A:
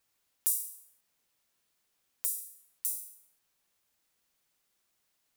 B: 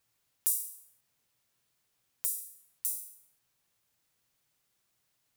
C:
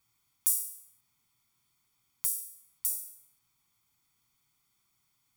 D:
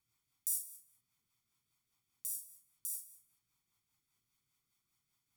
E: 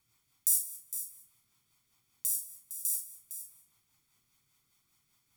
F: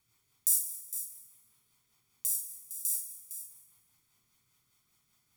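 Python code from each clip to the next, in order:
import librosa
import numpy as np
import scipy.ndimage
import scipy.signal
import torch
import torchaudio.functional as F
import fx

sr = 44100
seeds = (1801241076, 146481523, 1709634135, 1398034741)

y1 = fx.peak_eq(x, sr, hz=120.0, db=10.5, octaves=0.71)
y2 = y1 + 0.73 * np.pad(y1, (int(0.9 * sr / 1000.0), 0))[:len(y1)]
y3 = fx.rotary(y2, sr, hz=5.0)
y3 = y3 * librosa.db_to_amplitude(-4.5)
y4 = y3 + 10.0 ** (-11.0 / 20.0) * np.pad(y3, (int(459 * sr / 1000.0), 0))[:len(y3)]
y4 = y4 * librosa.db_to_amplitude(9.0)
y5 = fx.rev_fdn(y4, sr, rt60_s=3.1, lf_ratio=1.0, hf_ratio=0.4, size_ms=14.0, drr_db=6.5)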